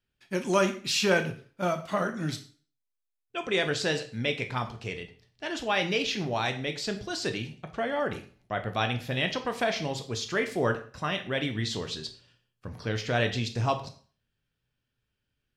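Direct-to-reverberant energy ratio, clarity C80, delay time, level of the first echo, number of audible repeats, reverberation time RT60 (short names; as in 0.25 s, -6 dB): 6.0 dB, 16.0 dB, none, none, none, 0.40 s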